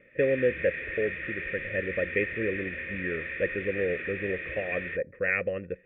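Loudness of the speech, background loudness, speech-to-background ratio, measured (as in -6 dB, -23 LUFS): -31.0 LUFS, -34.5 LUFS, 3.5 dB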